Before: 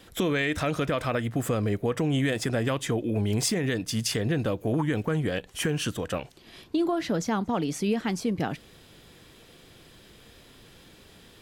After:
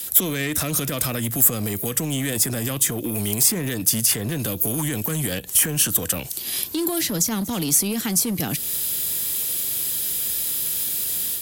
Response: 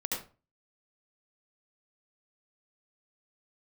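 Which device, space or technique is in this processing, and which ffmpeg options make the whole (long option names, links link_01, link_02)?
FM broadcast chain: -filter_complex "[0:a]highpass=frequency=45:width=0.5412,highpass=frequency=45:width=1.3066,dynaudnorm=framelen=110:gausssize=3:maxgain=6dB,acrossover=split=140|330|2000[link_01][link_02][link_03][link_04];[link_01]acompressor=threshold=-32dB:ratio=4[link_05];[link_02]acompressor=threshold=-24dB:ratio=4[link_06];[link_03]acompressor=threshold=-33dB:ratio=4[link_07];[link_04]acompressor=threshold=-43dB:ratio=4[link_08];[link_05][link_06][link_07][link_08]amix=inputs=4:normalize=0,aemphasis=mode=production:type=75fm,alimiter=limit=-20.5dB:level=0:latency=1:release=47,asoftclip=type=hard:threshold=-23.5dB,lowpass=frequency=15000:width=0.5412,lowpass=frequency=15000:width=1.3066,aemphasis=mode=production:type=75fm,volume=3.5dB"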